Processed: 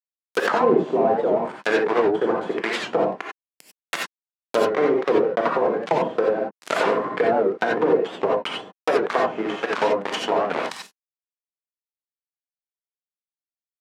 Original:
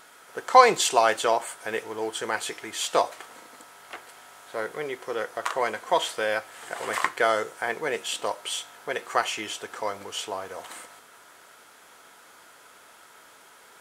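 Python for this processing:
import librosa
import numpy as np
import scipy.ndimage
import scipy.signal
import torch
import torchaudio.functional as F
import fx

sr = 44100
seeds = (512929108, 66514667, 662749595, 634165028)

y = fx.fuzz(x, sr, gain_db=41.0, gate_db=-33.0)
y = scipy.signal.sosfilt(scipy.signal.butter(4, 180.0, 'highpass', fs=sr, output='sos'), y)
y = fx.env_lowpass_down(y, sr, base_hz=480.0, full_db=-14.5)
y = fx.rev_gated(y, sr, seeds[0], gate_ms=110, shape='rising', drr_db=-1.0)
y = fx.record_warp(y, sr, rpm=78.0, depth_cents=160.0)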